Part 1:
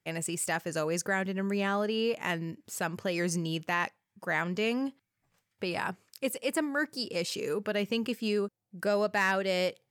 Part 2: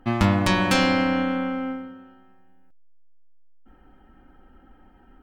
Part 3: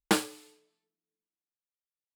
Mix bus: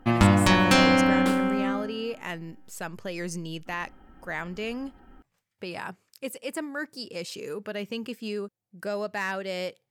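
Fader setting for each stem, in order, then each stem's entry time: -3.0 dB, +1.0 dB, -8.5 dB; 0.00 s, 0.00 s, 1.15 s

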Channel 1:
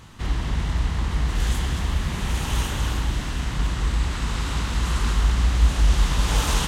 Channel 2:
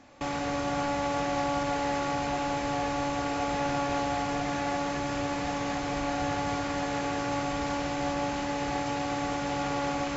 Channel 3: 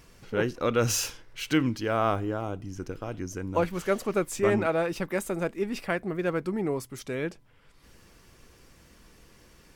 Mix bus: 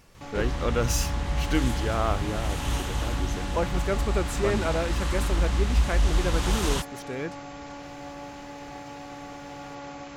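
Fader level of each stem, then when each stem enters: -4.5 dB, -9.5 dB, -2.0 dB; 0.15 s, 0.00 s, 0.00 s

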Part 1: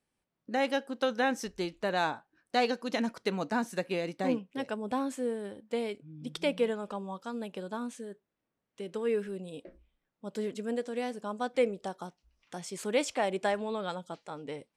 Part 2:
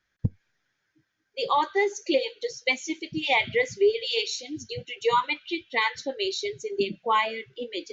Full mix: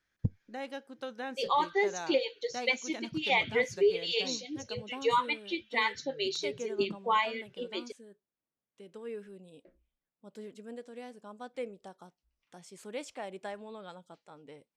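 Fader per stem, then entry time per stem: -11.0 dB, -4.5 dB; 0.00 s, 0.00 s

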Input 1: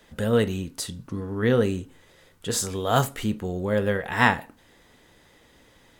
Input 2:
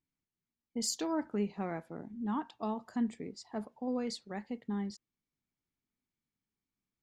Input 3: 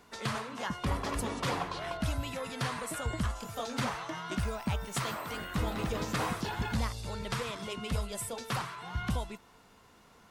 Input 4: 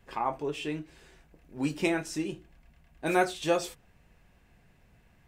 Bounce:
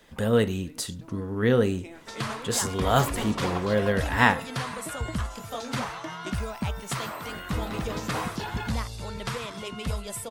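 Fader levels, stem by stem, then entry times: -0.5 dB, -17.0 dB, +2.5 dB, -17.5 dB; 0.00 s, 0.00 s, 1.95 s, 0.00 s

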